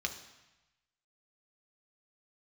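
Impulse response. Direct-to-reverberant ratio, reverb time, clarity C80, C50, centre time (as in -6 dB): 3.5 dB, 1.0 s, 12.5 dB, 10.0 dB, 15 ms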